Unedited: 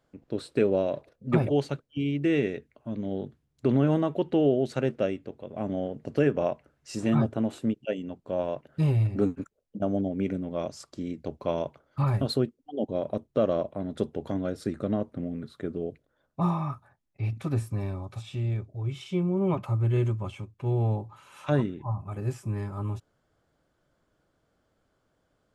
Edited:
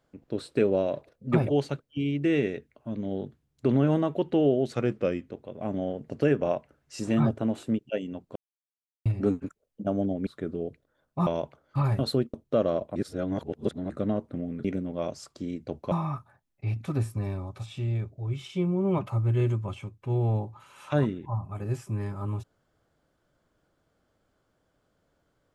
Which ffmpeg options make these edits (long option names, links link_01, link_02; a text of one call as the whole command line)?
ffmpeg -i in.wav -filter_complex "[0:a]asplit=12[link_01][link_02][link_03][link_04][link_05][link_06][link_07][link_08][link_09][link_10][link_11][link_12];[link_01]atrim=end=4.744[link_13];[link_02]atrim=start=4.74:end=5.27,asetpts=PTS-STARTPTS,asetrate=40572,aresample=44100,atrim=end_sample=25405,asetpts=PTS-STARTPTS[link_14];[link_03]atrim=start=5.266:end=8.31,asetpts=PTS-STARTPTS,afade=type=out:start_time=3.04:duration=0.004:curve=hsin[link_15];[link_04]atrim=start=8.31:end=9.01,asetpts=PTS-STARTPTS,volume=0[link_16];[link_05]atrim=start=9.01:end=10.222,asetpts=PTS-STARTPTS,afade=type=in:duration=0.004:curve=hsin[link_17];[link_06]atrim=start=15.478:end=16.482[link_18];[link_07]atrim=start=11.488:end=12.562[link_19];[link_08]atrim=start=13.168:end=13.792[link_20];[link_09]atrim=start=13.788:end=14.732,asetpts=PTS-STARTPTS,areverse[link_21];[link_10]atrim=start=14.728:end=15.482[link_22];[link_11]atrim=start=10.218:end=11.492[link_23];[link_12]atrim=start=16.478[link_24];[link_13][link_14]acrossfade=duration=0.004:curve1=hsin:curve2=hsin[link_25];[link_15][link_16][link_17]concat=n=3:v=0:a=1[link_26];[link_25][link_26]acrossfade=duration=0.004:curve1=hsin:curve2=hsin[link_27];[link_27][link_18]acrossfade=duration=0.004:curve1=hsin:curve2=hsin[link_28];[link_28][link_19]acrossfade=duration=0.004:curve1=hsin:curve2=hsin[link_29];[link_29][link_20]acrossfade=duration=0.004:curve1=hsin:curve2=hsin[link_30];[link_30][link_21]acrossfade=duration=0.004:curve1=hsin:curve2=hsin[link_31];[link_31][link_22]acrossfade=duration=0.004:curve1=hsin:curve2=hsin[link_32];[link_32][link_23]acrossfade=duration=0.004:curve1=hsin:curve2=hsin[link_33];[link_33][link_24]acrossfade=duration=0.004:curve1=hsin:curve2=hsin" out.wav